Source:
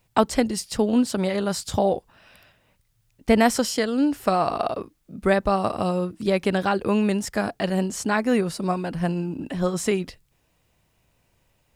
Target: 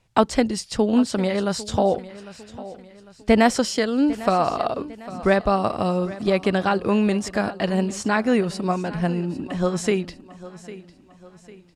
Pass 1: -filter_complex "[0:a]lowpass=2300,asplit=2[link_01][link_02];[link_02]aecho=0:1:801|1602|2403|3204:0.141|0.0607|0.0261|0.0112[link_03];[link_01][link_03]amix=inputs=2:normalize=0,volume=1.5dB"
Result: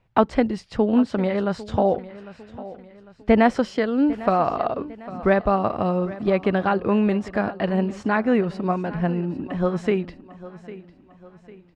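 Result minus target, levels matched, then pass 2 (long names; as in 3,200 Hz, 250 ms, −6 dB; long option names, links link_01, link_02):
8,000 Hz band −18.0 dB
-filter_complex "[0:a]lowpass=7700,asplit=2[link_01][link_02];[link_02]aecho=0:1:801|1602|2403|3204:0.141|0.0607|0.0261|0.0112[link_03];[link_01][link_03]amix=inputs=2:normalize=0,volume=1.5dB"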